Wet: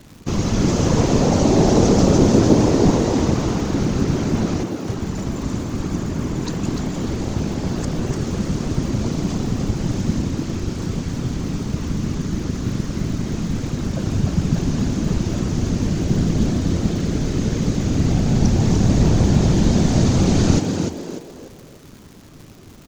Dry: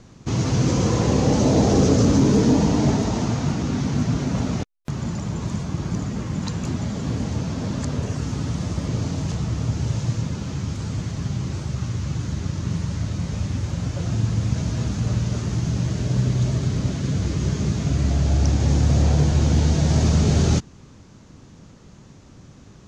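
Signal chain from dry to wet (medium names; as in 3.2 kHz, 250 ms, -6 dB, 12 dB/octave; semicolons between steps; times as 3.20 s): whisper effect; crackle 230 per s -37 dBFS; frequency-shifting echo 296 ms, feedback 35%, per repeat +80 Hz, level -5.5 dB; trim +1.5 dB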